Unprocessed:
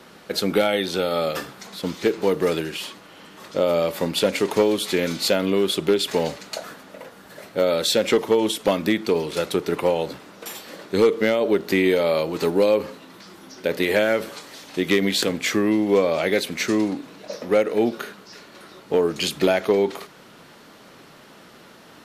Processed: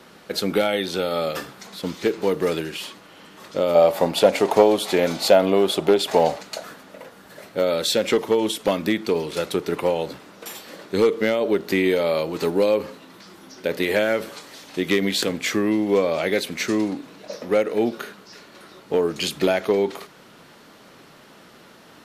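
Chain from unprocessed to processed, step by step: 3.75–6.43 bell 720 Hz +13.5 dB 0.87 oct; gain -1 dB

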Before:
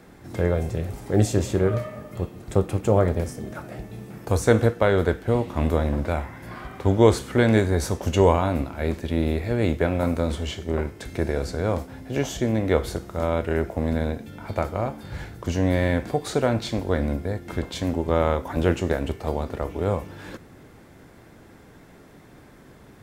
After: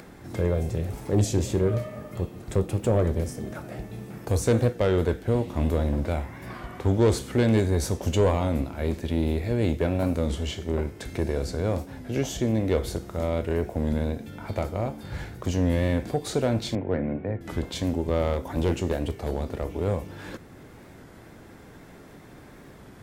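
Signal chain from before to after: 16.75–17.42 elliptic band-pass 100–2300 Hz, stop band 40 dB; soft clip -12.5 dBFS, distortion -15 dB; upward compressor, threshold -42 dBFS; 18.33–19.92 hard clip -16.5 dBFS, distortion -32 dB; dynamic EQ 1300 Hz, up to -6 dB, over -40 dBFS, Q 0.81; record warp 33 1/3 rpm, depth 100 cents

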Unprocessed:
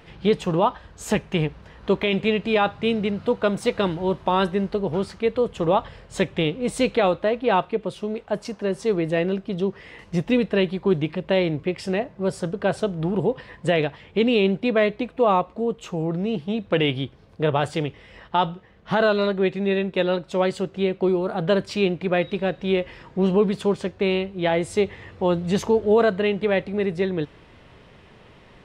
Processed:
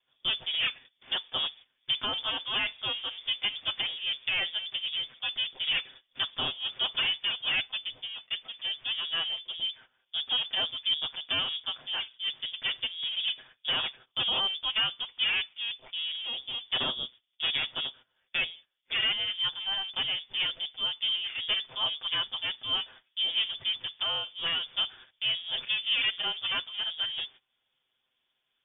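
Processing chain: minimum comb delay 7.7 ms; gate -40 dBFS, range -19 dB; inverted band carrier 3500 Hz; gain -9 dB

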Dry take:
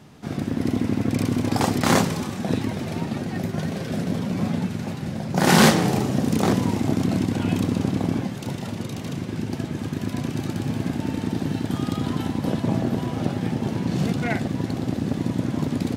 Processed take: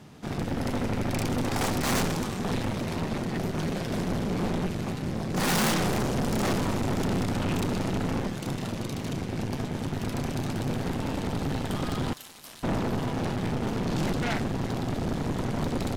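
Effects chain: added harmonics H 8 -13 dB, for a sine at -6 dBFS; soft clip -21.5 dBFS, distortion -5 dB; 12.13–12.63 pre-emphasis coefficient 0.97; gain -1 dB

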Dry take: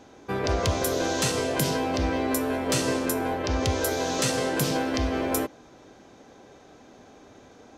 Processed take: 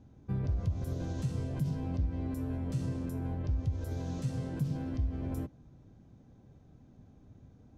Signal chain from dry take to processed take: limiter -18 dBFS, peak gain reduction 7 dB; EQ curve 140 Hz 0 dB, 400 Hz -22 dB, 2000 Hz -28 dB; compressor 6:1, threshold -33 dBFS, peak gain reduction 8.5 dB; gain +5.5 dB

